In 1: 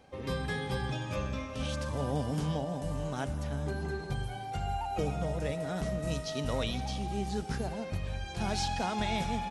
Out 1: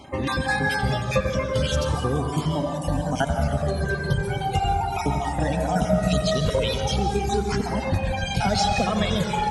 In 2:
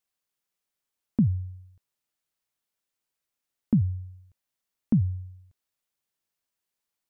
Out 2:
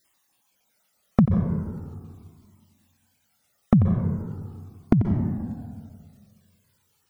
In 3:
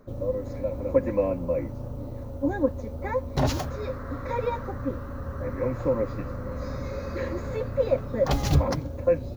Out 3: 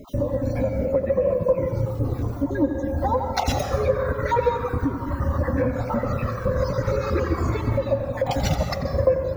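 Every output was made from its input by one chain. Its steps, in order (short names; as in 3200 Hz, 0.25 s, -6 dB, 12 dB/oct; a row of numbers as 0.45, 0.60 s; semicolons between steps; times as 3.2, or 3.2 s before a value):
random spectral dropouts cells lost 33%; HPF 140 Hz 6 dB/oct; reverb removal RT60 1.2 s; low shelf 380 Hz +4 dB; compressor 6:1, threshold -35 dBFS; on a send: tape echo 89 ms, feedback 63%, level -8.5 dB, low-pass 2200 Hz; on the sum: plate-style reverb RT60 1.9 s, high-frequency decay 0.35×, pre-delay 0.12 s, DRR 5.5 dB; cascading flanger falling 0.39 Hz; match loudness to -24 LUFS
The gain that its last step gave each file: +20.0, +23.5, +19.0 dB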